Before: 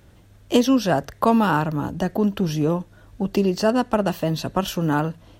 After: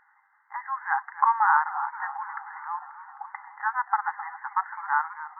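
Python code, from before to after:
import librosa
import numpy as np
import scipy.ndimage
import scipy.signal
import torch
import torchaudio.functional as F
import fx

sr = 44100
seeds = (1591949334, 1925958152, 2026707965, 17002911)

y = fx.brickwall_bandpass(x, sr, low_hz=780.0, high_hz=2100.0)
y = fx.echo_warbled(y, sr, ms=265, feedback_pct=70, rate_hz=2.8, cents=121, wet_db=-14.5)
y = y * librosa.db_to_amplitude(2.5)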